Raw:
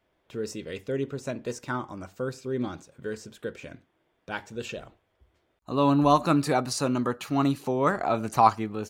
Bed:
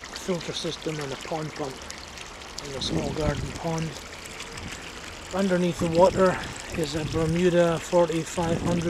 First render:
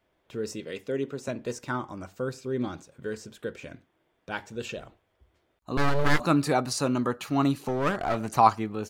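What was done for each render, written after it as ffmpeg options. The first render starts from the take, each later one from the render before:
-filter_complex "[0:a]asettb=1/sr,asplit=3[a][b][c];[a]atrim=end=0.604[d];[b]atrim=start=0.6:end=1.28,asetpts=PTS-STARTPTS,afade=t=in:d=0.004:c=qsin,afade=t=out:st=0.676:d=0.004:c=qsin,highpass=160[e];[c]atrim=start=1.276[f];[d][e]acrossfade=d=0.004:c1=hsin:c2=qsin[g];[g][f]acrossfade=d=0.004:c1=qsin:c2=hsin,asettb=1/sr,asplit=3[h][i][j];[h]atrim=end=5.774[k];[i]atrim=start=5.77:end=6.2,asetpts=PTS-STARTPTS,afade=t=in:d=0.004:c=qsin,afade=t=out:st=0.426:d=0.004:c=qsin,aeval=exprs='abs(val(0))':c=same[l];[j]atrim=start=6.196[m];[k][l]acrossfade=d=0.004:c1=hsin:c2=qsin[n];[n][m]acrossfade=d=0.004:c1=qsin:c2=hsin,asettb=1/sr,asplit=3[o][p][q];[o]atrim=end=7.684[r];[p]atrim=start=7.68:end=8.35,asetpts=PTS-STARTPTS,afade=t=in:d=0.004:c=qsin,afade=t=out:st=0.666:d=0.004:c=qsin,aeval=exprs='clip(val(0),-1,0.0422)':c=same[s];[q]atrim=start=8.346[t];[r][s]acrossfade=d=0.004:c1=hsin:c2=qsin[u];[u][t]acrossfade=d=0.004:c1=qsin:c2=hsin"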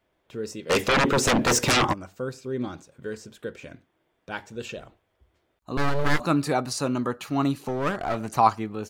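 -filter_complex "[0:a]asplit=3[a][b][c];[a]afade=t=out:st=0.69:d=0.02[d];[b]aeval=exprs='0.15*sin(PI/2*7.94*val(0)/0.15)':c=same,afade=t=in:st=0.69:d=0.02,afade=t=out:st=1.92:d=0.02[e];[c]afade=t=in:st=1.92:d=0.02[f];[d][e][f]amix=inputs=3:normalize=0"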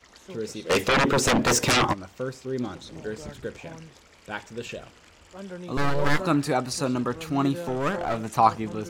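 -filter_complex "[1:a]volume=-15dB[a];[0:a][a]amix=inputs=2:normalize=0"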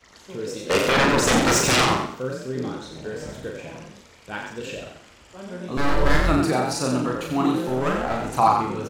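-filter_complex "[0:a]asplit=2[a][b];[b]adelay=39,volume=-3.5dB[c];[a][c]amix=inputs=2:normalize=0,asplit=5[d][e][f][g][h];[e]adelay=89,afreqshift=41,volume=-5dB[i];[f]adelay=178,afreqshift=82,volume=-14.4dB[j];[g]adelay=267,afreqshift=123,volume=-23.7dB[k];[h]adelay=356,afreqshift=164,volume=-33.1dB[l];[d][i][j][k][l]amix=inputs=5:normalize=0"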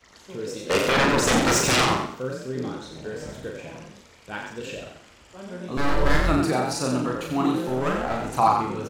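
-af "volume=-1.5dB"

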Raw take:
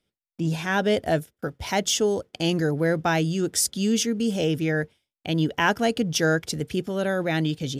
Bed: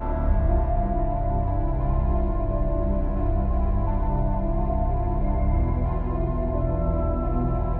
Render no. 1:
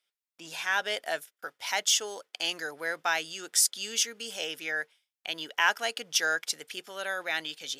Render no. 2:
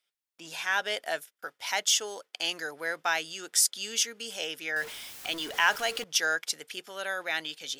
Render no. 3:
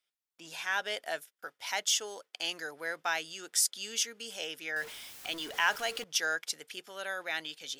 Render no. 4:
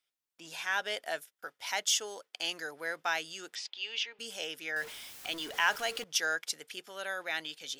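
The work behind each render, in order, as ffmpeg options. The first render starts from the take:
-af "highpass=1.1k"
-filter_complex "[0:a]asettb=1/sr,asplit=3[a][b][c];[a]atrim=end=4.764[d];[b]atrim=start=4.76:end=6.04,asetpts=PTS-STARTPTS,afade=t=in:d=0.004:c=qsin,afade=t=out:st=1.276:d=0.004:c=qsin,aeval=exprs='val(0)+0.5*0.0158*sgn(val(0))':c=same[e];[c]atrim=start=6.036[f];[d][e]acrossfade=d=0.004:c1=hsin:c2=qsin[g];[g][f]acrossfade=d=0.004:c1=qsin:c2=hsin"
-af "volume=-4dB"
-filter_complex "[0:a]asettb=1/sr,asplit=3[a][b][c];[a]atrim=end=3.554[d];[b]atrim=start=3.55:end=4.19,asetpts=PTS-STARTPTS,afade=t=in:d=0.004:c=qsin,afade=t=out:st=0.636:d=0.004:c=qsin,highpass=f=360:w=0.5412,highpass=f=360:w=1.3066,equalizer=f=510:t=q:w=4:g=-10,equalizer=f=890:t=q:w=4:g=7,equalizer=f=1.4k:t=q:w=4:g=-6,equalizer=f=2.6k:t=q:w=4:g=7,lowpass=f=4.1k:w=0.5412,lowpass=f=4.1k:w=1.3066[e];[c]atrim=start=4.186[f];[d][e]acrossfade=d=0.004:c1=hsin:c2=qsin[g];[g][f]acrossfade=d=0.004:c1=qsin:c2=hsin"

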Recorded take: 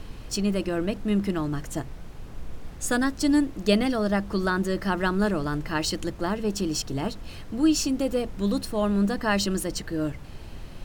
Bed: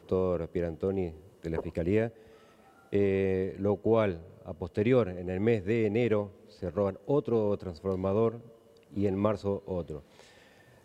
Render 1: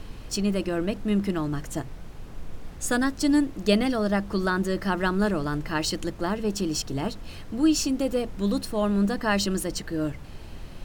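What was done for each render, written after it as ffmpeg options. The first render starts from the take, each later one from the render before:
-af "bandreject=f=60:t=h:w=4,bandreject=f=120:t=h:w=4"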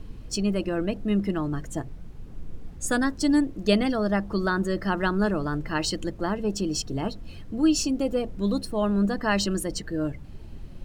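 -af "afftdn=nr=10:nf=-41"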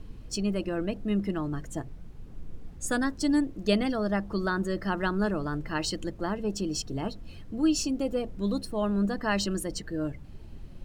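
-af "volume=-3.5dB"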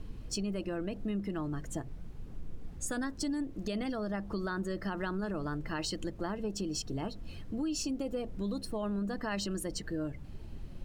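-af "alimiter=limit=-21dB:level=0:latency=1:release=15,acompressor=threshold=-33dB:ratio=3"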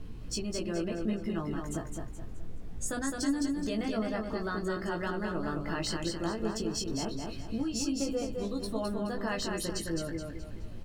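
-filter_complex "[0:a]asplit=2[a][b];[b]adelay=18,volume=-3.5dB[c];[a][c]amix=inputs=2:normalize=0,asplit=2[d][e];[e]aecho=0:1:212|424|636|848|1060:0.631|0.233|0.0864|0.032|0.0118[f];[d][f]amix=inputs=2:normalize=0"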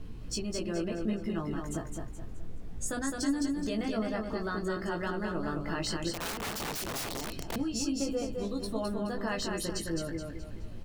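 -filter_complex "[0:a]asettb=1/sr,asplit=3[a][b][c];[a]atrim=end=6.134[d];[b]atrim=start=6.13:end=7.56,asetpts=PTS-STARTPTS,afade=t=in:d=0.004:c=qsin,afade=t=out:st=1.426:d=0.004:c=qsin,aeval=exprs='(mod(33.5*val(0)+1,2)-1)/33.5':c=same[e];[c]atrim=start=7.556[f];[d][e]acrossfade=d=0.004:c1=hsin:c2=qsin[g];[g][f]acrossfade=d=0.004:c1=qsin:c2=hsin"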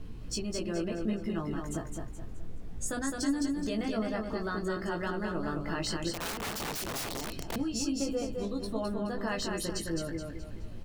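-filter_complex "[0:a]asettb=1/sr,asplit=3[a][b][c];[a]atrim=end=8.454[d];[b]atrim=start=8.45:end=9.18,asetpts=PTS-STARTPTS,afade=t=in:d=0.004:c=qsin,afade=t=out:st=0.726:d=0.004:c=qsin,highshelf=f=4.9k:g=-5[e];[c]atrim=start=9.176[f];[d][e]acrossfade=d=0.004:c1=hsin:c2=qsin[g];[g][f]acrossfade=d=0.004:c1=qsin:c2=hsin"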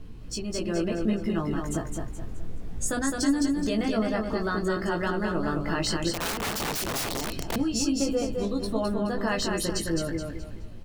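-af "dynaudnorm=f=120:g=9:m=6dB"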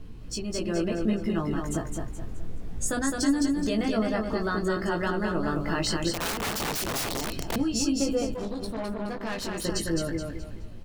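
-filter_complex "[0:a]asettb=1/sr,asplit=3[a][b][c];[a]atrim=end=5.554[d];[b]atrim=start=5.55:end=7.56,asetpts=PTS-STARTPTS,afade=t=in:d=0.004:c=qsin,afade=t=out:st=2.006:d=0.004:c=qsin,aeval=exprs='val(0)*gte(abs(val(0)),0.00266)':c=same[e];[c]atrim=start=7.556[f];[d][e]acrossfade=d=0.004:c1=hsin:c2=qsin[g];[g][f]acrossfade=d=0.004:c1=qsin:c2=hsin,asettb=1/sr,asplit=3[h][i][j];[h]atrim=end=8.344[k];[i]atrim=start=8.34:end=9.65,asetpts=PTS-STARTPTS,afade=t=in:d=0.004:c=qsin,afade=t=out:st=1.306:d=0.004:c=qsin,aeval=exprs='(tanh(25.1*val(0)+0.55)-tanh(0.55))/25.1':c=same[l];[j]atrim=start=9.646[m];[k][l]acrossfade=d=0.004:c1=hsin:c2=qsin[n];[n][m]acrossfade=d=0.004:c1=qsin:c2=hsin"

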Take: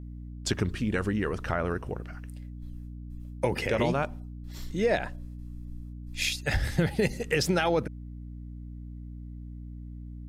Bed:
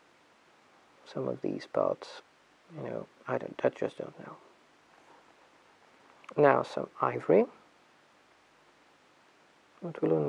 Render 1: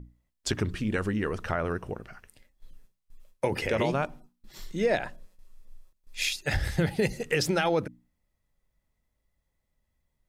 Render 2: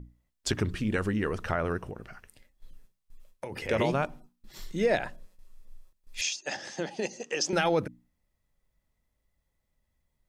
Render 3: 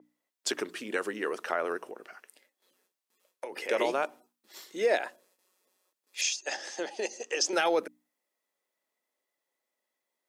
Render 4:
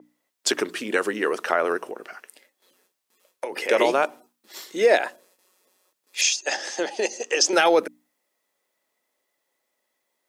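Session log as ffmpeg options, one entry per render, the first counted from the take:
-af "bandreject=f=60:t=h:w=6,bandreject=f=120:t=h:w=6,bandreject=f=180:t=h:w=6,bandreject=f=240:t=h:w=6,bandreject=f=300:t=h:w=6"
-filter_complex "[0:a]asettb=1/sr,asplit=3[a][b][c];[a]atrim=end=1.854[d];[b]atrim=start=1.85:end=3.69,asetpts=PTS-STARTPTS,afade=t=in:d=0.004:c=qsin,afade=t=out:st=1.836:d=0.004:c=qsin,acompressor=threshold=-34dB:ratio=6:attack=3.2:release=140:knee=1:detection=peak[e];[c]atrim=start=3.686[f];[d][e]acrossfade=d=0.004:c1=hsin:c2=qsin[g];[g][f]acrossfade=d=0.004:c1=qsin:c2=hsin,asettb=1/sr,asplit=3[h][i][j];[h]atrim=end=6.214[k];[i]atrim=start=6.21:end=7.53,asetpts=PTS-STARTPTS,afade=t=in:d=0.004:c=qsin,afade=t=out:st=1.316:d=0.004:c=qsin,highpass=f=260:w=0.5412,highpass=f=260:w=1.3066,equalizer=f=290:t=q:w=4:g=-4,equalizer=f=440:t=q:w=4:g=-7,equalizer=f=1.4k:t=q:w=4:g=-7,equalizer=f=2.1k:t=q:w=4:g=-10,equalizer=f=3.9k:t=q:w=4:g=-7,equalizer=f=6.3k:t=q:w=4:g=9,lowpass=f=6.6k:w=0.5412,lowpass=f=6.6k:w=1.3066[l];[j]atrim=start=7.526[m];[k][l]acrossfade=d=0.004:c1=hsin:c2=qsin[n];[n][m]acrossfade=d=0.004:c1=qsin:c2=hsin"
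-af "highpass=f=330:w=0.5412,highpass=f=330:w=1.3066,adynamicequalizer=threshold=0.00447:dfrequency=6300:dqfactor=0.7:tfrequency=6300:tqfactor=0.7:attack=5:release=100:ratio=0.375:range=2.5:mode=boostabove:tftype=highshelf"
-af "volume=8.5dB"

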